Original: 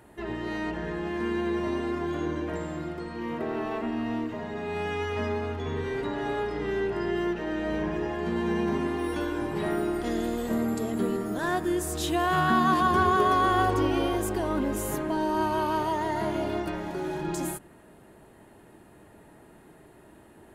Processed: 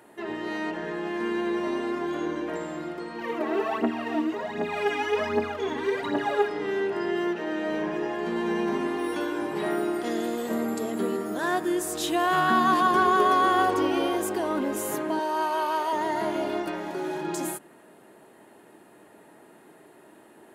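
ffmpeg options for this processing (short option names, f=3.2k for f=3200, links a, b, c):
-filter_complex "[0:a]asplit=3[a][b][c];[a]afade=t=out:st=3.18:d=0.02[d];[b]aphaser=in_gain=1:out_gain=1:delay=3.7:decay=0.69:speed=1.3:type=triangular,afade=t=in:st=3.18:d=0.02,afade=t=out:st=6.48:d=0.02[e];[c]afade=t=in:st=6.48:d=0.02[f];[d][e][f]amix=inputs=3:normalize=0,asettb=1/sr,asplit=3[g][h][i];[g]atrim=end=15.194[j];[h]atrim=start=15.19:end=15.93,asetpts=PTS-STARTPTS,afade=t=in:d=0.004:c=qsin,afade=t=out:st=0.736:d=0.004:c=qsin,highpass=460[k];[i]atrim=start=15.926[l];[j][k]acrossfade=d=0.004:c1=hsin:c2=qsin[m];[m][l]acrossfade=d=0.004:c1=qsin:c2=hsin,highpass=250,volume=2dB"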